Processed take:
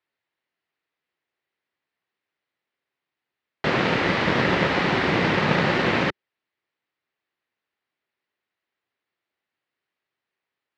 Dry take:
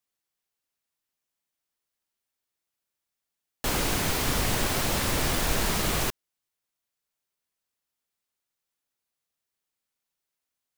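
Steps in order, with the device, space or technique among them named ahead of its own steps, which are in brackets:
ring modulator pedal into a guitar cabinet (ring modulator with a square carrier 180 Hz; loudspeaker in its box 110–3,700 Hz, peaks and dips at 200 Hz −4 dB, 370 Hz +4 dB, 1,900 Hz +5 dB, 3,400 Hz −3 dB)
level +6 dB

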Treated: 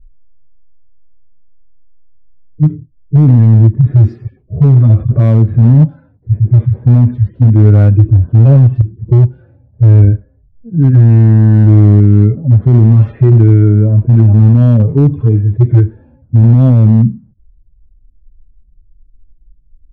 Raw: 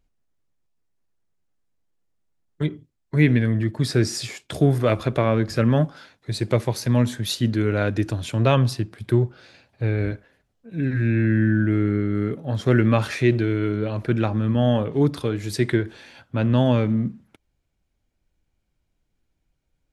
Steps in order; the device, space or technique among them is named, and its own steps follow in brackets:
harmonic-percussive split with one part muted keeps harmonic
RIAA equalisation playback
low-pass that shuts in the quiet parts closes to 520 Hz, open at −5 dBFS
spectral tilt −2 dB per octave
limiter into clipper (brickwall limiter −1.5 dBFS, peak gain reduction 7.5 dB; hard clipping −3 dBFS, distortion −25 dB)
level +2 dB

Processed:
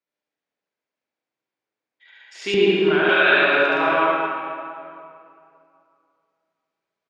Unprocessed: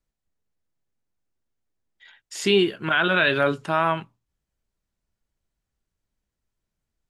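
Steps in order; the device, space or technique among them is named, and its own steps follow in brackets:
station announcement (band-pass filter 380–4,900 Hz; parametric band 2,300 Hz +5 dB 0.29 octaves; loudspeakers that aren't time-aligned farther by 24 metres −1 dB, 40 metres −1 dB; convolution reverb RT60 2.5 s, pre-delay 67 ms, DRR −3 dB)
0:02.54–0:03.09: RIAA equalisation playback
high-shelf EQ 7,600 Hz −5.5 dB
level −3.5 dB

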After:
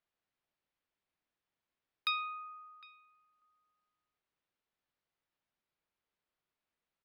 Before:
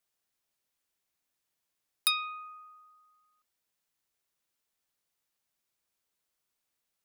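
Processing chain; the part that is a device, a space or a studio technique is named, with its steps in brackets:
shout across a valley (high-frequency loss of the air 260 metres; slap from a distant wall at 130 metres, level −17 dB)

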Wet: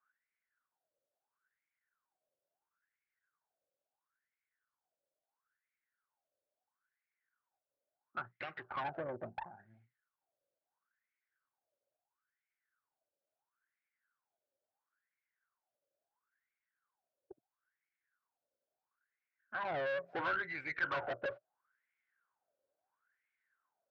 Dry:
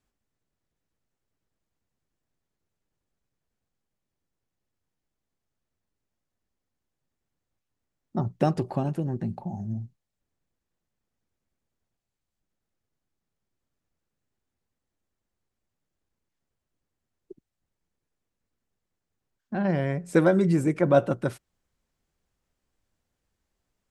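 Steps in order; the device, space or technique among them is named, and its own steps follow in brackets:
wah-wah guitar rig (LFO wah 0.74 Hz 550–2,200 Hz, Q 12; tube saturation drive 49 dB, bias 0.55; loudspeaker in its box 84–3,900 Hz, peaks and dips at 120 Hz +5 dB, 200 Hz −7 dB, 1,500 Hz +9 dB)
level +13.5 dB

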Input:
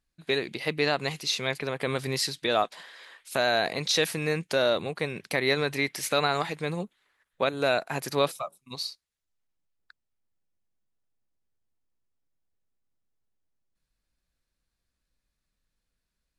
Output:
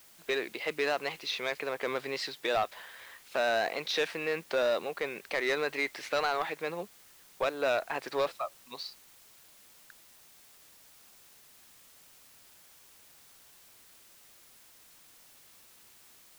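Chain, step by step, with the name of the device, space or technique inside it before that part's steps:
tape answering machine (band-pass filter 400–3,100 Hz; soft clipping −21.5 dBFS, distortion −13 dB; tape wow and flutter; white noise bed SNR 22 dB)

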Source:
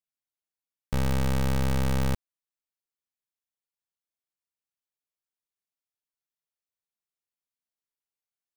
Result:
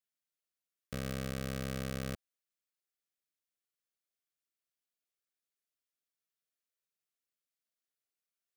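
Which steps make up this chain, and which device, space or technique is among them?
PA system with an anti-feedback notch (high-pass filter 190 Hz 6 dB per octave; Butterworth band-reject 900 Hz, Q 2.3; brickwall limiter −25.5 dBFS, peak gain reduction 7.5 dB)

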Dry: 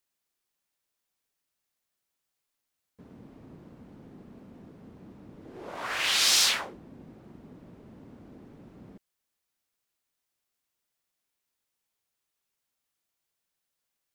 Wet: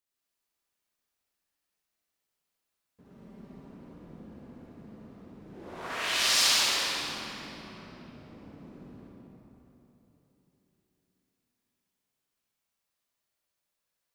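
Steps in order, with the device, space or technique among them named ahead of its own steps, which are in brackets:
0:03.04–0:03.60: comb filter 5.1 ms
tunnel (flutter between parallel walls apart 11.1 metres, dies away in 0.71 s; convolution reverb RT60 3.5 s, pre-delay 63 ms, DRR −5 dB)
level −7 dB

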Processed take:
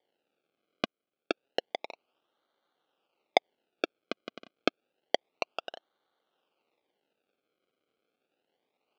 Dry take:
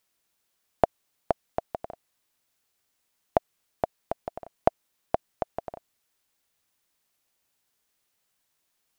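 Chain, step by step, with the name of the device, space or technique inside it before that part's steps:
0:00.84–0:01.31: high-shelf EQ 2,700 Hz −9.5 dB
circuit-bent sampling toy (sample-and-hold swept by an LFO 33×, swing 100% 0.29 Hz; loudspeaker in its box 490–4,300 Hz, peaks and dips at 640 Hz −4 dB, 1,000 Hz −9 dB, 1,800 Hz −10 dB, 2,800 Hz +4 dB)
level +2 dB

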